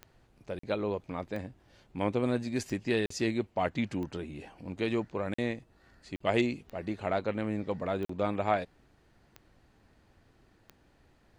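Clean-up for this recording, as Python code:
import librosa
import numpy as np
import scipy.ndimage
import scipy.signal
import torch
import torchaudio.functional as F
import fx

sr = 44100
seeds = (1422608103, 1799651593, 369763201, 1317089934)

y = fx.fix_declick_ar(x, sr, threshold=10.0)
y = fx.fix_interpolate(y, sr, at_s=(0.59, 3.06, 5.34, 6.16, 8.05), length_ms=44.0)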